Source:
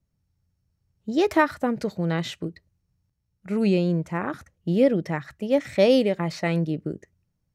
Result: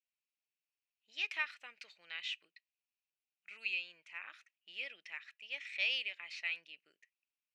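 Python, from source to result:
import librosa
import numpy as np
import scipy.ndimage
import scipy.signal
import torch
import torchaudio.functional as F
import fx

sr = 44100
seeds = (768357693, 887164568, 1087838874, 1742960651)

y = fx.ladder_bandpass(x, sr, hz=2800.0, resonance_pct=70)
y = F.gain(torch.from_numpy(y), 2.0).numpy()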